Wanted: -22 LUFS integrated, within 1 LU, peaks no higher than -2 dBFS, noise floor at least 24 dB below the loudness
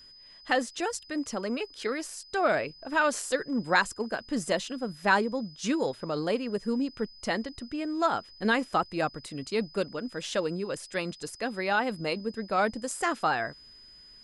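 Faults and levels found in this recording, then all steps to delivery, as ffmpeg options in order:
steady tone 5000 Hz; tone level -50 dBFS; loudness -30.0 LUFS; peak -9.0 dBFS; loudness target -22.0 LUFS
-> -af "bandreject=f=5k:w=30"
-af "volume=8dB,alimiter=limit=-2dB:level=0:latency=1"

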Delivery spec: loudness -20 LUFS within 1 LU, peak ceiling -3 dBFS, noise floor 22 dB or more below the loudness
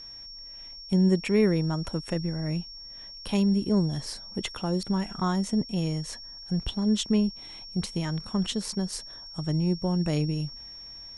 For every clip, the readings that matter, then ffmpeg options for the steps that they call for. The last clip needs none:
steady tone 5500 Hz; tone level -41 dBFS; loudness -28.0 LUFS; peak -12.0 dBFS; loudness target -20.0 LUFS
-> -af "bandreject=f=5.5k:w=30"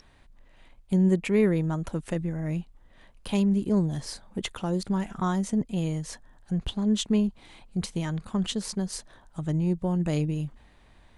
steady tone none; loudness -28.0 LUFS; peak -12.0 dBFS; loudness target -20.0 LUFS
-> -af "volume=8dB"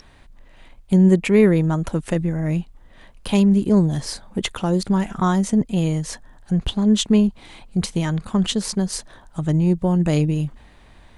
loudness -20.0 LUFS; peak -4.0 dBFS; noise floor -49 dBFS

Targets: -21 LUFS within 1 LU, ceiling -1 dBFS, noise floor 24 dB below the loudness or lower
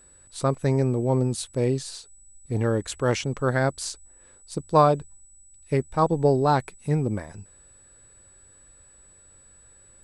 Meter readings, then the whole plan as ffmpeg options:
steady tone 7900 Hz; tone level -52 dBFS; loudness -24.5 LUFS; peak -6.0 dBFS; loudness target -21.0 LUFS
-> -af "bandreject=f=7.9k:w=30"
-af "volume=3.5dB"

